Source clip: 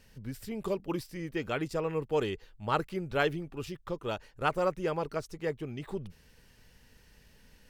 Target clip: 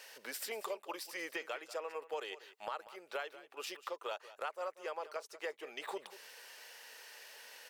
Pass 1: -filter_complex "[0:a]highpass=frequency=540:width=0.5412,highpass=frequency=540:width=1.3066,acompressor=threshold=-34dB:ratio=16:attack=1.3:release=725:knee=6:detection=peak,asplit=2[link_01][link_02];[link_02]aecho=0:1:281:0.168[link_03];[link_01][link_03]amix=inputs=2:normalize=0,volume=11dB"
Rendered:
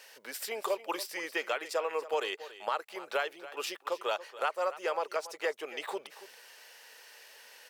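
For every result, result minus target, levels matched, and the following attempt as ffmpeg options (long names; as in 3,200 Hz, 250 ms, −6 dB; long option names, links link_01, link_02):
echo 92 ms late; downward compressor: peak gain reduction −9.5 dB
-filter_complex "[0:a]highpass=frequency=540:width=0.5412,highpass=frequency=540:width=1.3066,acompressor=threshold=-34dB:ratio=16:attack=1.3:release=725:knee=6:detection=peak,asplit=2[link_01][link_02];[link_02]aecho=0:1:189:0.168[link_03];[link_01][link_03]amix=inputs=2:normalize=0,volume=11dB"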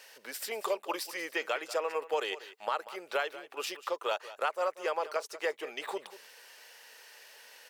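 downward compressor: peak gain reduction −9.5 dB
-filter_complex "[0:a]highpass=frequency=540:width=0.5412,highpass=frequency=540:width=1.3066,acompressor=threshold=-44dB:ratio=16:attack=1.3:release=725:knee=6:detection=peak,asplit=2[link_01][link_02];[link_02]aecho=0:1:189:0.168[link_03];[link_01][link_03]amix=inputs=2:normalize=0,volume=11dB"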